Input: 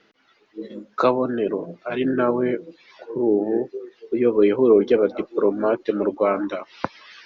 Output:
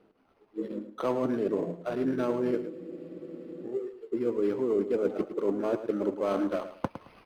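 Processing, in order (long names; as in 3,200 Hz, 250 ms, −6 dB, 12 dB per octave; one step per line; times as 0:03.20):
running median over 25 samples
reversed playback
downward compressor 6 to 1, threshold −25 dBFS, peak gain reduction 14 dB
reversed playback
repeating echo 109 ms, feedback 23%, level −11.5 dB
frozen spectrum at 0:02.72, 0.94 s
linearly interpolated sample-rate reduction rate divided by 6×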